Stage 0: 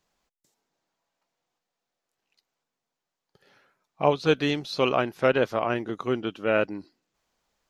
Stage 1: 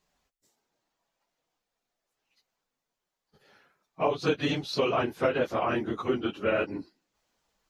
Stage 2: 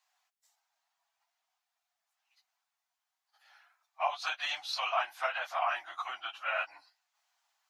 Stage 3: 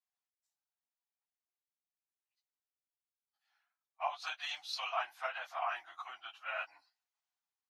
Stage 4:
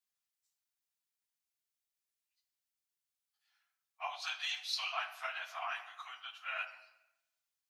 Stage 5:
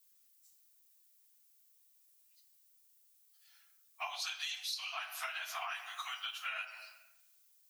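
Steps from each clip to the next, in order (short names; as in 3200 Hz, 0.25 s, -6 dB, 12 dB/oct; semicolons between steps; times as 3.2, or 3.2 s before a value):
phase scrambler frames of 50 ms; compressor 5:1, threshold -22 dBFS, peak gain reduction 8 dB
elliptic high-pass 710 Hz, stop band 40 dB
notch 580 Hz, Q 13; three-band expander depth 40%; gain -6.5 dB
passive tone stack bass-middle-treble 5-5-5; on a send at -8 dB: reverb RT60 0.95 s, pre-delay 3 ms; on the sum: gain +10.5 dB
RIAA curve recording; compressor 12:1, threshold -43 dBFS, peak gain reduction 19 dB; gain +6 dB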